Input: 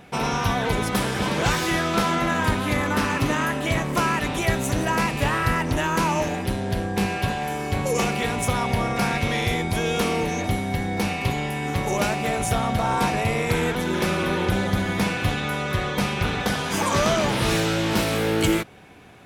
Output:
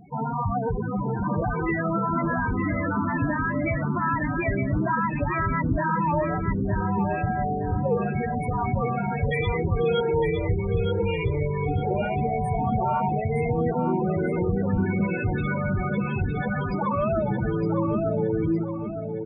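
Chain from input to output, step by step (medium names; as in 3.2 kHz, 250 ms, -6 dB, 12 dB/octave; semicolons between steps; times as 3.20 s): 9.19–11.67 s: comb 2.1 ms, depth 74%; peak limiter -15.5 dBFS, peak gain reduction 8 dB; loudest bins only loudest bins 8; feedback delay 912 ms, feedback 33%, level -6 dB; trim +2.5 dB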